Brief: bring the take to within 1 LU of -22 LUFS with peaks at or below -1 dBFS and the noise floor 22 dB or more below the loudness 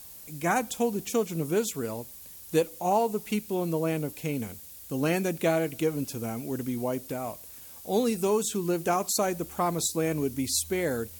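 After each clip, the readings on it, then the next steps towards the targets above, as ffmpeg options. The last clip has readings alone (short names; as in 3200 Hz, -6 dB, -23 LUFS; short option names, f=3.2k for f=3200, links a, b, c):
noise floor -46 dBFS; noise floor target -51 dBFS; loudness -29.0 LUFS; peak -12.0 dBFS; loudness target -22.0 LUFS
-> -af "afftdn=nr=6:nf=-46"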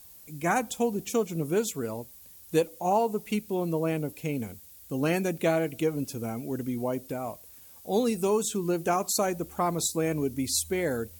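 noise floor -51 dBFS; loudness -29.0 LUFS; peak -12.5 dBFS; loudness target -22.0 LUFS
-> -af "volume=7dB"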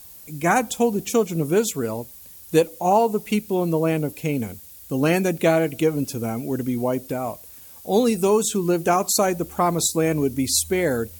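loudness -22.0 LUFS; peak -5.5 dBFS; noise floor -44 dBFS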